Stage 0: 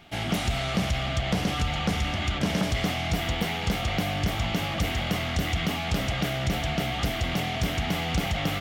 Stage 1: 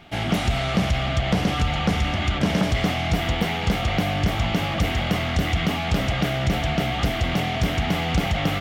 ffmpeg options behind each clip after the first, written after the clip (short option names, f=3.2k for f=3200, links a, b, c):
-af "highshelf=f=4.1k:g=-6.5,volume=5dB"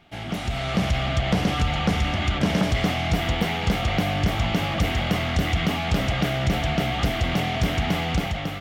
-af "dynaudnorm=f=240:g=5:m=8dB,volume=-8dB"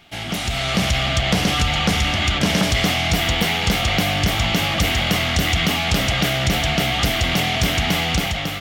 -af "highshelf=f=2.3k:g=11.5,volume=2dB"